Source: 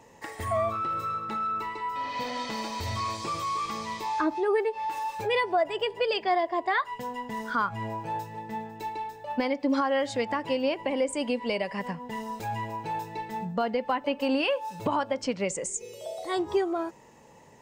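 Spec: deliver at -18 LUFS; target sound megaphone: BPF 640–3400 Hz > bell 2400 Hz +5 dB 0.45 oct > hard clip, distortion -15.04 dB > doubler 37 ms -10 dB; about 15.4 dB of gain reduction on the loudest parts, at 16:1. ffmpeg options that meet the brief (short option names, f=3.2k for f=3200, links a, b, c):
-filter_complex "[0:a]acompressor=threshold=-37dB:ratio=16,highpass=640,lowpass=3.4k,equalizer=f=2.4k:t=o:w=0.45:g=5,asoftclip=type=hard:threshold=-39dB,asplit=2[a][b];[b]adelay=37,volume=-10dB[c];[a][c]amix=inputs=2:normalize=0,volume=26dB"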